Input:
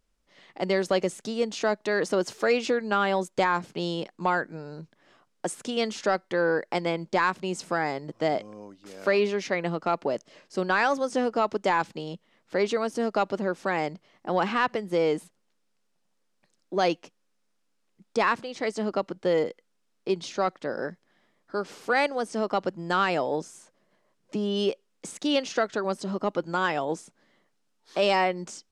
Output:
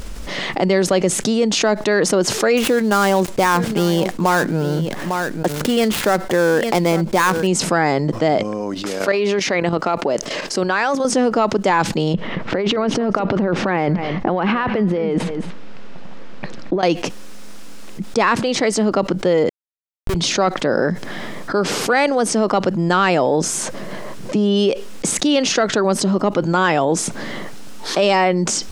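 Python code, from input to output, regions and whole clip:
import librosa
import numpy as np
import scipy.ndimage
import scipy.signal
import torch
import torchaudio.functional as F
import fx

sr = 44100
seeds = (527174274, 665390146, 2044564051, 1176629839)

y = fx.chain(x, sr, fx.dead_time(dead_ms=0.1),
    fx.echo_single(ms=852, db=-18.0), at=(2.57, 7.47))
y = fx.chain(y, sr, fx.low_shelf(hz=170.0, db=-11.0),
    fx.level_steps(step_db=11), at=(8.43, 11.05))
y = fx.chain(y, sr, fx.lowpass(hz=2800.0, slope=12),
    fx.over_compress(threshold_db=-35.0, ratio=-1.0),
    fx.echo_single(ms=225, db=-17.5), at=(12.14, 16.83))
y = fx.chain(y, sr, fx.power_curve(exponent=2.0),
    fx.schmitt(flips_db=-31.5), at=(19.49, 20.15))
y = fx.low_shelf(y, sr, hz=260.0, db=6.0)
y = fx.env_flatten(y, sr, amount_pct=70)
y = y * librosa.db_to_amplitude(4.5)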